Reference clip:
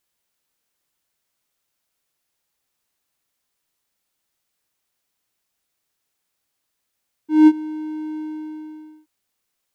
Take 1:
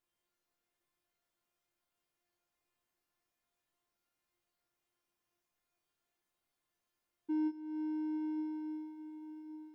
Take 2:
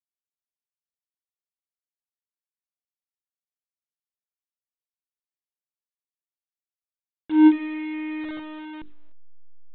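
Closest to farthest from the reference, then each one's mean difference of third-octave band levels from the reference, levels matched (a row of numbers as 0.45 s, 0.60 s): 1, 2; 2.0 dB, 5.0 dB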